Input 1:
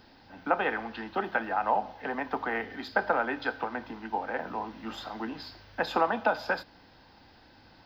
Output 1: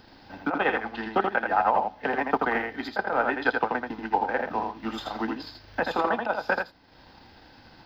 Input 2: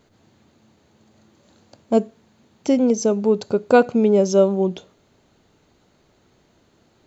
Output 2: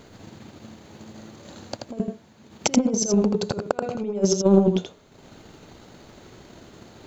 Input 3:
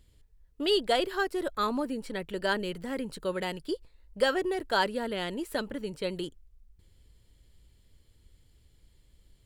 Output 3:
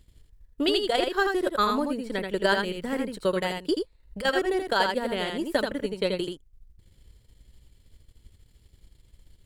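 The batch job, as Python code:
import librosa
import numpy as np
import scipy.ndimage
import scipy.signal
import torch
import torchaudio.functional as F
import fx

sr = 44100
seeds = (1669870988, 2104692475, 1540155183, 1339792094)

y = fx.transient(x, sr, attack_db=5, sustain_db=-8)
y = fx.over_compress(y, sr, threshold_db=-23.0, ratio=-0.5)
y = y + 10.0 ** (-4.5 / 20.0) * np.pad(y, (int(82 * sr / 1000.0), 0))[:len(y)]
y = y * librosa.db_to_amplitude(2.0)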